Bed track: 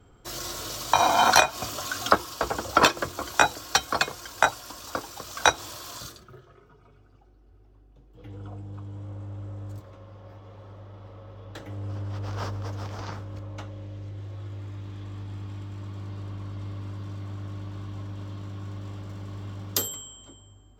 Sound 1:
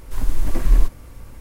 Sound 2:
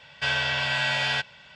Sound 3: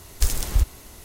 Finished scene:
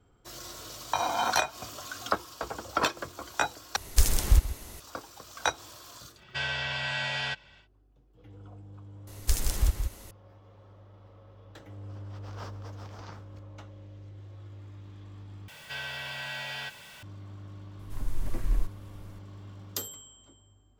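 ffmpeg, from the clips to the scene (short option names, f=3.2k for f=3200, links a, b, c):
-filter_complex "[3:a]asplit=2[a][b];[2:a]asplit=2[c][d];[0:a]volume=-8.5dB[e];[a]aecho=1:1:133:0.168[f];[c]lowshelf=f=82:g=8.5[g];[b]aecho=1:1:171:0.447[h];[d]aeval=exprs='val(0)+0.5*0.0282*sgn(val(0))':c=same[i];[1:a]dynaudnorm=f=180:g=3:m=4dB[j];[e]asplit=3[k][l][m];[k]atrim=end=3.764[n];[f]atrim=end=1.04,asetpts=PTS-STARTPTS,volume=-0.5dB[o];[l]atrim=start=4.796:end=15.484[p];[i]atrim=end=1.55,asetpts=PTS-STARTPTS,volume=-13.5dB[q];[m]atrim=start=17.026[r];[g]atrim=end=1.55,asetpts=PTS-STARTPTS,volume=-6.5dB,afade=t=in:d=0.1,afade=t=out:st=1.45:d=0.1,adelay=6130[s];[h]atrim=end=1.04,asetpts=PTS-STARTPTS,volume=-5dB,afade=t=in:d=0.004:c=hsin,afade=t=out:st=1.036:d=0.004:c=hsin,adelay=9070[t];[j]atrim=end=1.4,asetpts=PTS-STARTPTS,volume=-13.5dB,afade=t=in:d=0.004:c=hsin,afade=t=out:st=1.396:d=0.004:c=hsin,adelay=17790[u];[n][o]acrossfade=d=0.004:c1=hsin:c2=hsin[v];[v][p]acrossfade=d=0.004:c1=hsin:c2=hsin[w];[w][q]acrossfade=d=0.004:c1=hsin:c2=hsin[x];[x][r]acrossfade=d=0.004:c1=hsin:c2=hsin[y];[y][s][t][u]amix=inputs=4:normalize=0"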